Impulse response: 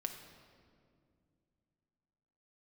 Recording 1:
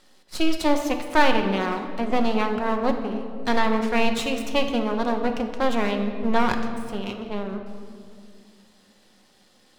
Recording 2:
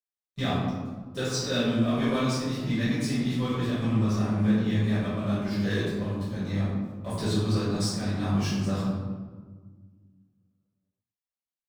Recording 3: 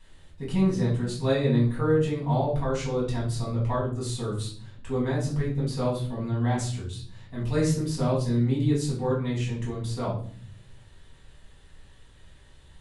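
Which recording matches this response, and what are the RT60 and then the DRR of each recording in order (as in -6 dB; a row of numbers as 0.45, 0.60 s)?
1; 2.3, 1.5, 0.50 s; 4.0, -12.0, -6.5 dB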